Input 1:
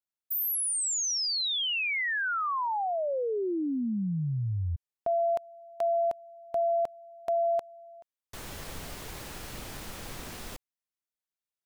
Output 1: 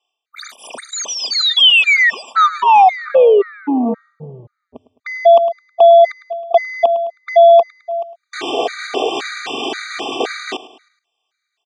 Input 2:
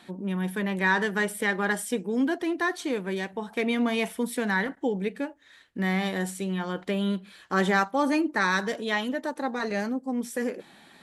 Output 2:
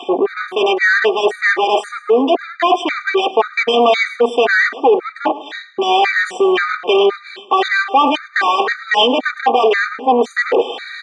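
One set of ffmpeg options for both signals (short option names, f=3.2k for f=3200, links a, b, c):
-filter_complex "[0:a]afwtdn=0.0141,highshelf=f=2.2k:g=6.5,aecho=1:1:2.6:0.89,areverse,acompressor=threshold=-38dB:ratio=6:attack=6.4:release=240:knee=1:detection=rms,areverse,asplit=2[a][b];[b]highpass=f=720:p=1,volume=24dB,asoftclip=type=tanh:threshold=-26.5dB[c];[a][c]amix=inputs=2:normalize=0,lowpass=f=1.7k:p=1,volume=-6dB,highpass=f=270:w=0.5412,highpass=f=270:w=1.3066,equalizer=f=320:t=q:w=4:g=-9,equalizer=f=640:t=q:w=4:g=5,equalizer=f=1.6k:t=q:w=4:g=-3,equalizer=f=3.1k:t=q:w=4:g=6,equalizer=f=5.3k:t=q:w=4:g=-6,lowpass=f=6.5k:w=0.5412,lowpass=f=6.5k:w=1.3066,aecho=1:1:106|212|318|424:0.141|0.0664|0.0312|0.0147,alimiter=level_in=26dB:limit=-1dB:release=50:level=0:latency=1,afftfilt=real='re*gt(sin(2*PI*1.9*pts/sr)*(1-2*mod(floor(b*sr/1024/1200),2)),0)':imag='im*gt(sin(2*PI*1.9*pts/sr)*(1-2*mod(floor(b*sr/1024/1200),2)),0)':win_size=1024:overlap=0.75,volume=-1dB"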